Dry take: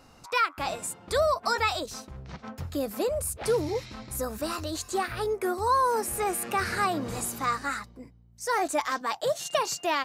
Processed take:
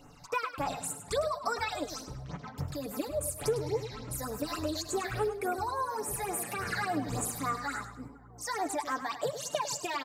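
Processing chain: comb 6.9 ms, depth 55%; compressor, threshold -27 dBFS, peak gain reduction 9.5 dB; on a send: analogue delay 0.481 s, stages 4096, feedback 76%, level -23.5 dB; on the sum: phaser stages 8, 3.5 Hz, lowest notch 350–4700 Hz; warbling echo 0.102 s, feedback 30%, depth 85 cents, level -10.5 dB

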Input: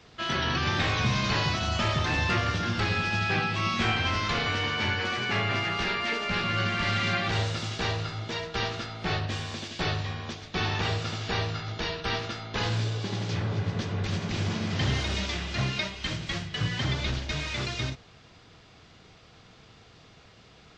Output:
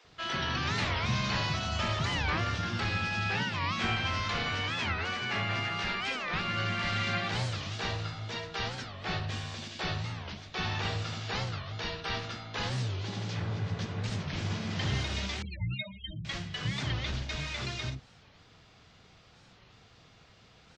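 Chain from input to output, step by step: 15.43–16.25 loudest bins only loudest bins 8; bands offset in time highs, lows 40 ms, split 360 Hz; record warp 45 rpm, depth 250 cents; gain -4 dB

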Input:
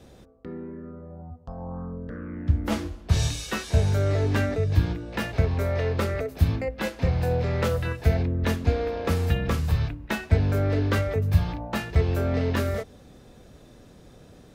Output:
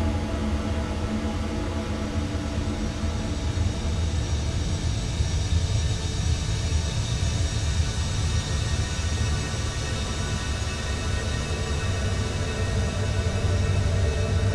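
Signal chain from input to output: local time reversal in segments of 99 ms; LPF 10000 Hz 24 dB/oct; Paulstretch 14×, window 1.00 s, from 2.71

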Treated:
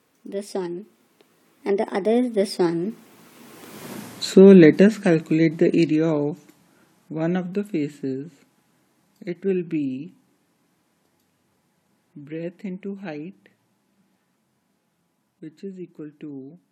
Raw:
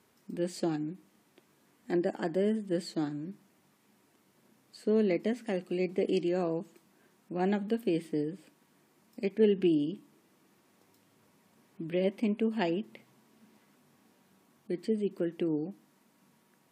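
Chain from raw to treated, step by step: Doppler pass-by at 3.92, 43 m/s, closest 8.1 m; maximiser +31 dB; gain -1 dB

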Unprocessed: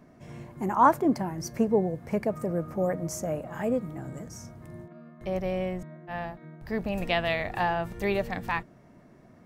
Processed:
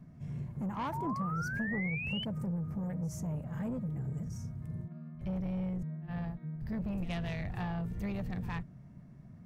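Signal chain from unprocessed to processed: resonant low shelf 240 Hz +13.5 dB, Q 1.5; compressor 4:1, threshold -20 dBFS, peak gain reduction 7 dB; soft clip -22 dBFS, distortion -14 dB; painted sound rise, 0.92–2.25, 870–3100 Hz -30 dBFS; pre-echo 64 ms -18 dB; gain -9 dB

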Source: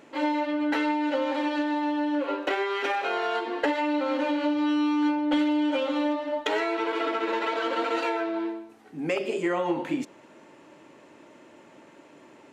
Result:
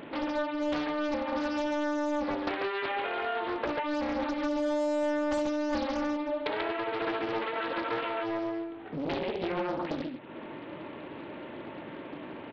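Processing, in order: low shelf 150 Hz +8.5 dB; compressor 3:1, threshold -43 dBFS, peak gain reduction 17 dB; tapped delay 61/138 ms -9.5/-4 dB; downsampling 8000 Hz; Doppler distortion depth 0.87 ms; gain +7 dB

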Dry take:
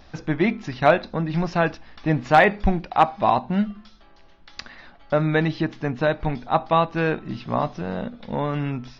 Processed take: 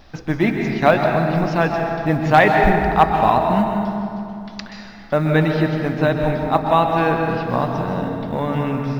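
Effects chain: companded quantiser 8-bit; on a send: reverb RT60 2.6 s, pre-delay 0.125 s, DRR 2 dB; on the sum: gain +2 dB

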